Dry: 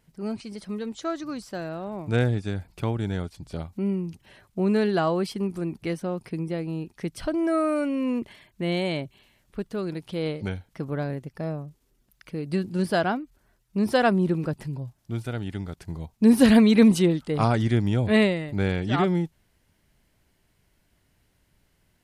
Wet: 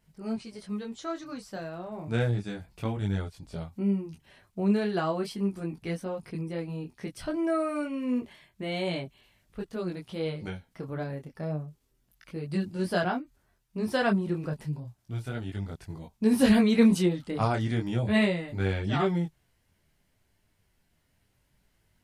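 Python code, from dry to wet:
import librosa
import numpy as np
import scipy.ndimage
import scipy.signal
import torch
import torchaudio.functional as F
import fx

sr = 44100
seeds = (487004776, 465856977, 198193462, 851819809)

y = fx.peak_eq(x, sr, hz=330.0, db=-2.0, octaves=0.77)
y = fx.detune_double(y, sr, cents=11)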